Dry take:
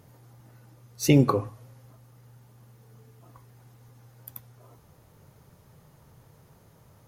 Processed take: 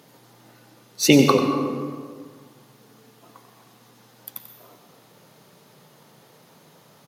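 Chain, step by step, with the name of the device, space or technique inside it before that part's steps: PA in a hall (high-pass 180 Hz 24 dB/octave; peaking EQ 3.7 kHz +7.5 dB 1.2 oct; delay 92 ms -11 dB; reverberation RT60 1.8 s, pre-delay 120 ms, DRR 6.5 dB); trim +5.5 dB

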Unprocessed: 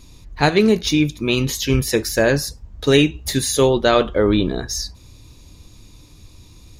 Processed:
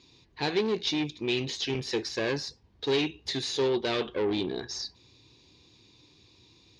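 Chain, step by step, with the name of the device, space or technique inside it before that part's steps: guitar amplifier (valve stage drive 16 dB, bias 0.45; tone controls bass -9 dB, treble +11 dB; cabinet simulation 96–4200 Hz, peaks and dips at 120 Hz +4 dB, 380 Hz +5 dB, 610 Hz -7 dB, 1.3 kHz -7 dB); trim -6 dB

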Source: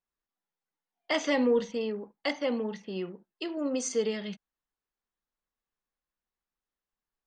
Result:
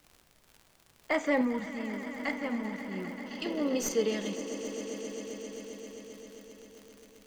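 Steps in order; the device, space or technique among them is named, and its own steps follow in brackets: echo with a slow build-up 132 ms, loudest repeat 5, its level -14.5 dB; 0.90–3.27 s: time-frequency box 2.5–6.7 kHz -11 dB; 1.41–3.46 s: peaking EQ 460 Hz -14 dB 0.65 oct; record under a worn stylus (tracing distortion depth 0.027 ms; crackle 96 per s -42 dBFS; pink noise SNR 31 dB)

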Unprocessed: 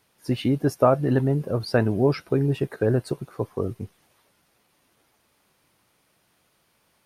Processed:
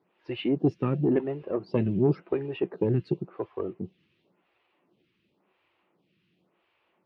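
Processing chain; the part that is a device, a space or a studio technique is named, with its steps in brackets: vibe pedal into a guitar amplifier (lamp-driven phase shifter 0.93 Hz; valve stage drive 14 dB, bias 0.55; cabinet simulation 83–3500 Hz, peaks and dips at 180 Hz +10 dB, 350 Hz +9 dB, 1.5 kHz -4 dB, 2.7 kHz +6 dB)

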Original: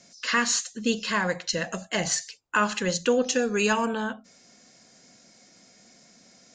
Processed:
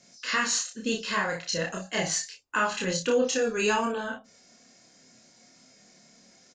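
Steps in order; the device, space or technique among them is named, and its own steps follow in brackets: double-tracked vocal (doubling 31 ms -4.5 dB; chorus 0.37 Hz, depth 7.1 ms)

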